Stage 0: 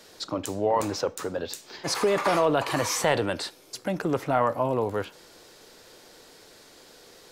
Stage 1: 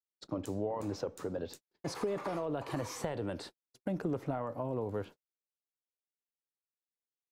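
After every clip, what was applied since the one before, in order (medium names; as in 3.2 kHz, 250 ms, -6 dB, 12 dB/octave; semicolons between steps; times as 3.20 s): compression 5:1, threshold -26 dBFS, peak gain reduction 9 dB; tilt shelf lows +6.5 dB, about 730 Hz; gate -39 dBFS, range -55 dB; trim -8 dB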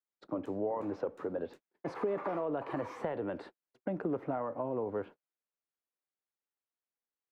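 three-band isolator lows -12 dB, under 200 Hz, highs -24 dB, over 2.5 kHz; trim +2 dB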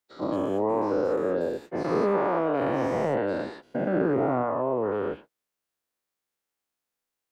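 every event in the spectrogram widened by 240 ms; trim +3.5 dB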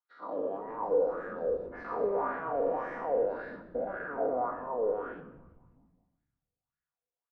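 wah-wah 1.8 Hz 480–1700 Hz, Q 4.1; frequency-shifting echo 188 ms, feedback 56%, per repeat -140 Hz, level -18.5 dB; simulated room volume 3100 m³, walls furnished, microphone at 1.8 m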